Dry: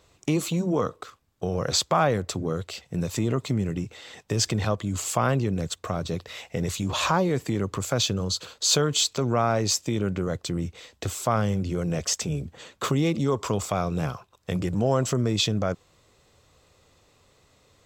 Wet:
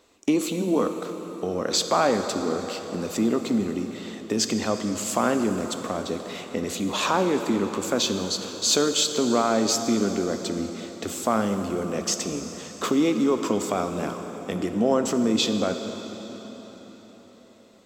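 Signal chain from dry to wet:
low shelf with overshoot 180 Hz −9.5 dB, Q 3
dense smooth reverb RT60 4.8 s, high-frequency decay 0.8×, DRR 6.5 dB

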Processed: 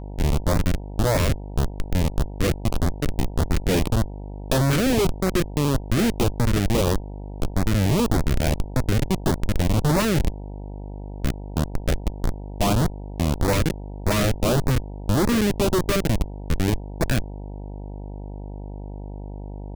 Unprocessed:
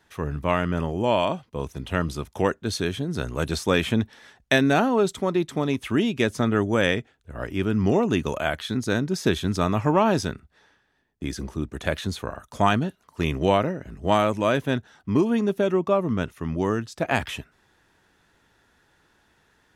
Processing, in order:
parametric band 140 Hz +6.5 dB 0.35 octaves
comparator with hysteresis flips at −21 dBFS
auto-filter notch saw up 1.7 Hz 670–3,300 Hz
hum with harmonics 50 Hz, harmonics 19, −40 dBFS −6 dB per octave
level +6 dB

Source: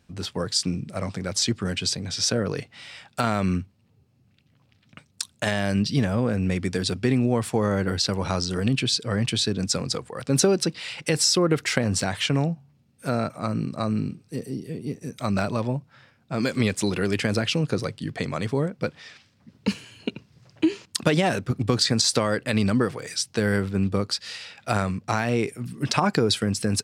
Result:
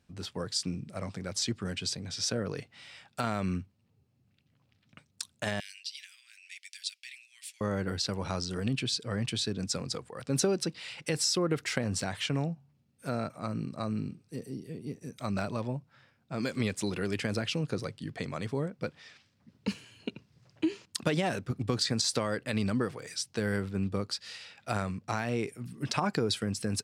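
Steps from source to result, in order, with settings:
0:05.60–0:07.61: Butterworth high-pass 2,200 Hz 36 dB per octave
level −8 dB

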